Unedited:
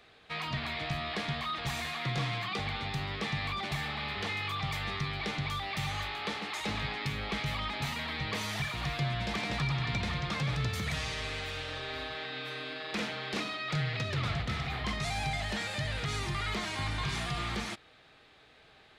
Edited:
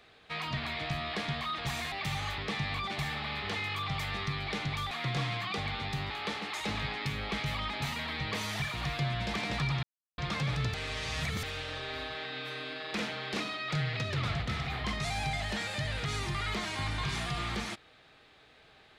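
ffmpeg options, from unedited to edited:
-filter_complex "[0:a]asplit=9[a][b][c][d][e][f][g][h][i];[a]atrim=end=1.922[j];[b]atrim=start=5.638:end=6.102[k];[c]atrim=start=3.108:end=5.642[l];[d]atrim=start=1.918:end=3.112[m];[e]atrim=start=6.098:end=9.83,asetpts=PTS-STARTPTS,afade=t=out:st=3.728:d=0.004:c=hsin[n];[f]atrim=start=9.83:end=10.18,asetpts=PTS-STARTPTS,volume=0[o];[g]atrim=start=10.18:end=10.742,asetpts=PTS-STARTPTS,afade=t=in:d=0.004:c=hsin[p];[h]atrim=start=10.738:end=11.432,asetpts=PTS-STARTPTS,areverse[q];[i]atrim=start=11.428[r];[j][k]acrossfade=d=0.004:c1=hsin:c2=hsin[s];[s][l]acrossfade=d=0.004:c1=hsin:c2=hsin[t];[t][m]acrossfade=d=0.004:c1=hsin:c2=hsin[u];[n][o][p]concat=n=3:v=0:a=1[v];[u][v]acrossfade=d=0.004:c1=hsin:c2=hsin[w];[w][q]acrossfade=d=0.004:c1=hsin:c2=hsin[x];[x][r]acrossfade=d=0.004:c1=hsin:c2=hsin"

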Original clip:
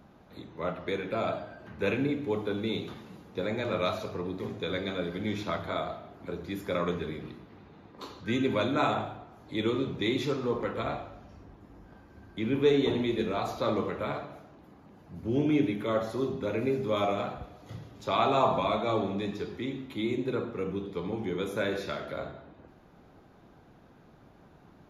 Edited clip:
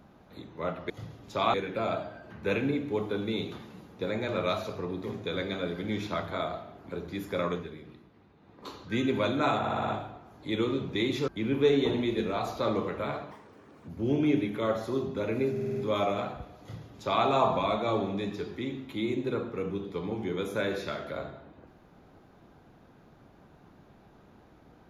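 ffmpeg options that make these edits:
-filter_complex "[0:a]asplit=18[a][b][c][d][e][f][g][h][i][j][k][l][m][n][o][p][q][r];[a]atrim=end=0.902[s];[b]atrim=start=17.618:end=18.262[t];[c]atrim=start=0.898:end=7.06,asetpts=PTS-STARTPTS,afade=t=out:st=5.912:d=0.25:silence=0.398107[u];[d]atrim=start=7.06:end=7.76,asetpts=PTS-STARTPTS,volume=-8dB[v];[e]atrim=start=7.76:end=9.002,asetpts=PTS-STARTPTS,afade=t=in:d=0.25:silence=0.398107[w];[f]atrim=start=8.938:end=9.002[x];[g]atrim=start=8.938:end=9.002[y];[h]atrim=start=8.938:end=9.002[z];[i]atrim=start=8.938:end=9.002[aa];[j]atrim=start=8.938:end=10.342[ab];[k]atrim=start=12.288:end=14.324[ac];[l]atrim=start=14.32:end=15.14,asetpts=PTS-STARTPTS,asetrate=63504,aresample=44100,atrim=end_sample=25112,asetpts=PTS-STARTPTS[ad];[m]atrim=start=15.136:end=16.822[ae];[n]atrim=start=16.768:end=16.822[af];[o]atrim=start=16.768:end=16.822[ag];[p]atrim=start=16.768:end=16.822[ah];[q]atrim=start=16.768:end=16.822[ai];[r]atrim=start=16.768[aj];[s][t]acrossfade=d=0.004:c1=hsin:c2=hsin[ak];[u][v][w]concat=n=3:v=0:a=1[al];[ak][al]acrossfade=d=0.004:c1=hsin:c2=hsin[am];[am][x]acrossfade=d=0.004:c1=hsin:c2=hsin[an];[an][y]acrossfade=d=0.004:c1=hsin:c2=hsin[ao];[ao][z]acrossfade=d=0.004:c1=hsin:c2=hsin[ap];[ap][aa]acrossfade=d=0.004:c1=hsin:c2=hsin[aq];[aq][ab]acrossfade=d=0.004:c1=hsin:c2=hsin[ar];[ar][ac]acrossfade=d=0.004:c1=hsin:c2=hsin[as];[as][ad]acrossfade=d=0.004:c1=hsin:c2=hsin[at];[at][ae]acrossfade=d=0.004:c1=hsin:c2=hsin[au];[au][af]acrossfade=d=0.004:c1=hsin:c2=hsin[av];[av][ag]acrossfade=d=0.004:c1=hsin:c2=hsin[aw];[aw][ah]acrossfade=d=0.004:c1=hsin:c2=hsin[ax];[ax][ai]acrossfade=d=0.004:c1=hsin:c2=hsin[ay];[ay][aj]acrossfade=d=0.004:c1=hsin:c2=hsin"

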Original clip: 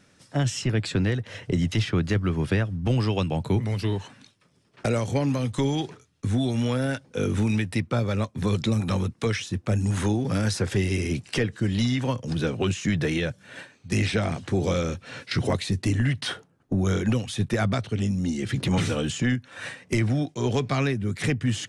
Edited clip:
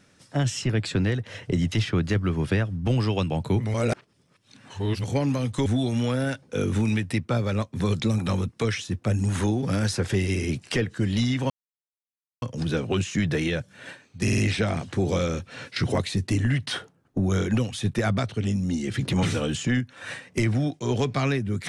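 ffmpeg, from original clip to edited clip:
-filter_complex "[0:a]asplit=8[a][b][c][d][e][f][g][h];[a]atrim=end=3.742[i];[b]atrim=start=3.738:end=5.042,asetpts=PTS-STARTPTS,areverse[j];[c]atrim=start=5.038:end=5.662[k];[d]atrim=start=6.278:end=12.12,asetpts=PTS-STARTPTS,afade=t=out:st=5.838:d=0.004:c=hsin,apad=pad_dur=0.92[l];[e]atrim=start=12.12:end=13.982,asetpts=PTS-STARTPTS,afade=t=in:d=0.004:c=hsin[m];[f]atrim=start=13.928:end=13.982[n];[g]atrim=start=13.928:end=13.982[o];[h]atrim=start=13.928[p];[i][j]acrossfade=d=0.004:c1=hsin:c2=hsin[q];[q][k]acrossfade=d=0.004:c1=hsin:c2=hsin[r];[l][m]concat=n=2:v=0:a=1[s];[r][s]acrossfade=d=0.004:c1=hsin:c2=hsin[t];[t][n]acrossfade=d=0.004:c1=hsin:c2=hsin[u];[u][o]acrossfade=d=0.004:c1=hsin:c2=hsin[v];[v][p]acrossfade=d=0.004:c1=hsin:c2=hsin"

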